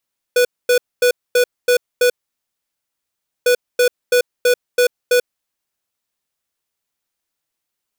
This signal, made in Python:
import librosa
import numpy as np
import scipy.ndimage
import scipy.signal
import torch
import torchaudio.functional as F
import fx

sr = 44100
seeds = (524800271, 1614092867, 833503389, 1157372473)

y = fx.beep_pattern(sr, wave='square', hz=492.0, on_s=0.09, off_s=0.24, beeps=6, pause_s=1.36, groups=2, level_db=-12.5)